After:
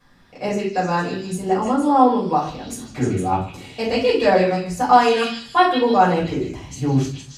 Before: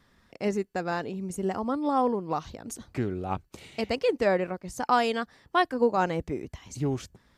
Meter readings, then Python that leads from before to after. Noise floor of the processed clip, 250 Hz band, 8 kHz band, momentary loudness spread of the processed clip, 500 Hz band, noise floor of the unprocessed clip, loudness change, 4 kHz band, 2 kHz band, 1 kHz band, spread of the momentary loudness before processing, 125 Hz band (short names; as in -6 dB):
-43 dBFS, +9.5 dB, +8.0 dB, 12 LU, +8.5 dB, -66 dBFS, +9.5 dB, +10.5 dB, +8.0 dB, +11.5 dB, 12 LU, +10.5 dB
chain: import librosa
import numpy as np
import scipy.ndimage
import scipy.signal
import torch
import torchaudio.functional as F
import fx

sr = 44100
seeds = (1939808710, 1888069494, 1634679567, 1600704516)

y = fx.low_shelf(x, sr, hz=75.0, db=-6.0)
y = fx.echo_stepped(y, sr, ms=154, hz=3200.0, octaves=0.7, feedback_pct=70, wet_db=0.0)
y = fx.room_shoebox(y, sr, seeds[0], volume_m3=260.0, walls='furnished', distance_m=5.6)
y = y * librosa.db_to_amplitude(-1.5)